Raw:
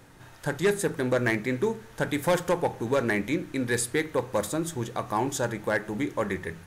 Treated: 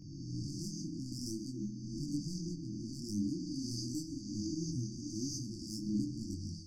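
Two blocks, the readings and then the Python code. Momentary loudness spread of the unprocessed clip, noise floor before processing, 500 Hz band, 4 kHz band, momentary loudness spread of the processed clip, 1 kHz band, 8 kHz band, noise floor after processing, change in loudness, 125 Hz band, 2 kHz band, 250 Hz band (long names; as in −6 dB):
6 LU, −50 dBFS, −25.5 dB, −6.0 dB, 5 LU, below −40 dB, −9.0 dB, −46 dBFS, −12.0 dB, −6.5 dB, below −40 dB, −7.0 dB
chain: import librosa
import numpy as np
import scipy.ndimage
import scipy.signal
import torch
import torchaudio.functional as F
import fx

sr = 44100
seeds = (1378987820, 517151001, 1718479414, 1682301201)

y = fx.spec_swells(x, sr, rise_s=1.61)
y = fx.peak_eq(y, sr, hz=2200.0, db=7.5, octaves=1.4)
y = fx.rider(y, sr, range_db=4, speed_s=2.0)
y = scipy.signal.sosfilt(scipy.signal.cheby1(6, 3, 6300.0, 'lowpass', fs=sr, output='sos'), y)
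y = 10.0 ** (-18.0 / 20.0) * np.tanh(y / 10.0 ** (-18.0 / 20.0))
y = fx.brickwall_bandstop(y, sr, low_hz=340.0, high_hz=4500.0)
y = fx.echo_stepped(y, sr, ms=692, hz=1000.0, octaves=0.7, feedback_pct=70, wet_db=-2)
y = fx.rev_plate(y, sr, seeds[0], rt60_s=0.78, hf_ratio=0.85, predelay_ms=0, drr_db=13.0)
y = fx.detune_double(y, sr, cents=16)
y = y * librosa.db_to_amplitude(-2.0)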